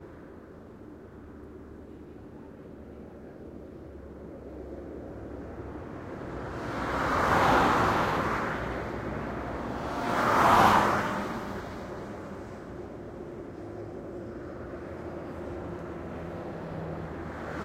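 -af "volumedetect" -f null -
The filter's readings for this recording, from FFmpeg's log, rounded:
mean_volume: -31.3 dB
max_volume: -8.2 dB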